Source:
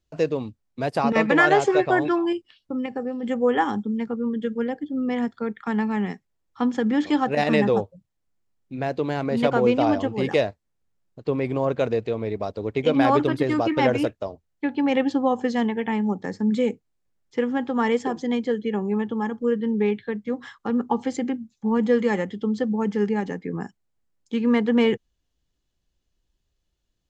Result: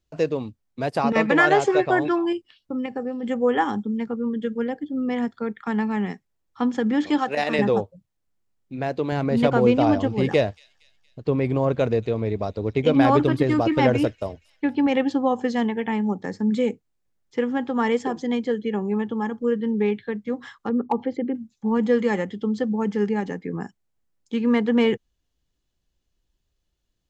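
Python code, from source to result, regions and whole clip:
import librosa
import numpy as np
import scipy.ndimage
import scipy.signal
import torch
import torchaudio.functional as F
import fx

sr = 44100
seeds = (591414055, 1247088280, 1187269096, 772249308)

y = fx.chain(x, sr, fx.highpass(hz=510.0, slope=6),
    fx.band_squash(depth_pct=40), at=(7.18, 7.59))
y = fx.chain(y, sr, fx.low_shelf(hz=170.0, db=9.0),
    fx.echo_wet_highpass(ms=233, feedback_pct=50, hz=4100.0, wet_db=-15.0), at=(9.12, 14.87))
y = fx.chain(y, sr, fx.envelope_sharpen(power=1.5),
    fx.lowpass(hz=3800.0, slope=24),
    fx.clip_hard(threshold_db=-13.0), at=(20.69, 21.35))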